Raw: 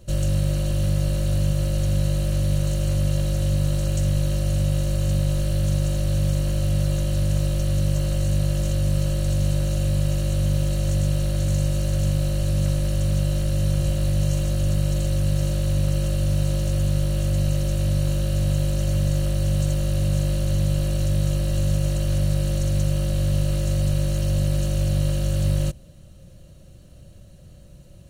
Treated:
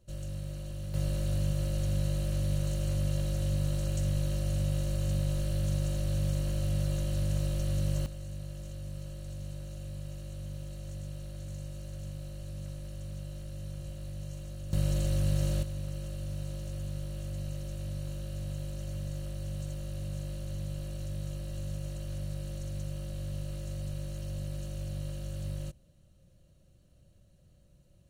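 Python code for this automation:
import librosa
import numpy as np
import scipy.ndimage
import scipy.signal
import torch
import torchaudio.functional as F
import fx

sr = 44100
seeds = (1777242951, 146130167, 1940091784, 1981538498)

y = fx.gain(x, sr, db=fx.steps((0.0, -16.5), (0.94, -8.5), (8.06, -19.0), (14.73, -6.5), (15.63, -15.5)))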